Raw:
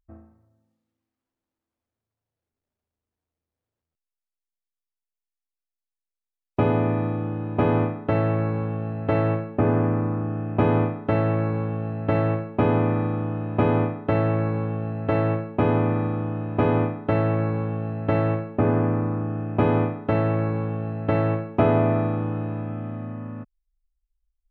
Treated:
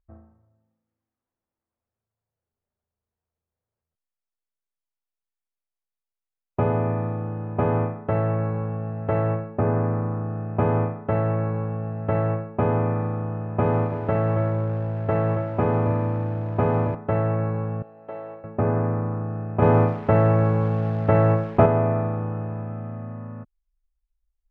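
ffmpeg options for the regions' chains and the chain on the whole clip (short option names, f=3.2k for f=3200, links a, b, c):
-filter_complex "[0:a]asettb=1/sr,asplit=3[a][b][c];[a]atrim=end=13.644[d];[b]atrim=start=13.64:end=16.95,asetpts=PTS-STARTPTS,afade=t=in:d=0.004:c=qsin,afade=t=out:st=3.306:d=0.004:c=qsin,aeval=exprs='val(0)+0.5*0.0168*sgn(val(0))':c=same,aecho=1:1:276:0.316,atrim=end_sample=145971[e];[c]atrim=start=16.946[f];[d][e]acrossfade=d=0.004:c1=hsin:c2=qsin[g];[g][f]acrossfade=d=0.004:c1=qsin:c2=hsin,asettb=1/sr,asplit=3[h][i][j];[h]atrim=end=17.824[k];[i]atrim=start=17.82:end=18.44,asetpts=PTS-STARTPTS,afade=t=in:d=0.004:c=qsin,afade=t=out:st=0.616:d=0.004:c=qsin,highpass=600,equalizer=f=1.6k:w=0.47:g=-13[l];[j]atrim=start=18.436[m];[k][l]acrossfade=d=0.004:c1=hsin:c2=qsin[n];[n][m]acrossfade=d=0.004:c1=qsin:c2=hsin,asettb=1/sr,asplit=3[o][p][q];[o]atrim=end=19.624[r];[p]atrim=start=19.62:end=21.66,asetpts=PTS-STARTPTS,afade=t=in:d=0.004:c=qsin,afade=t=out:st=2.036:d=0.004:c=qsin,acontrast=40,acrusher=bits=7:dc=4:mix=0:aa=0.000001[s];[q]atrim=start=21.656[t];[r][s]acrossfade=d=0.004:c1=hsin:c2=qsin[u];[u][t]acrossfade=d=0.004:c1=qsin:c2=hsin,lowpass=1.7k,equalizer=f=290:t=o:w=0.31:g=-12.5"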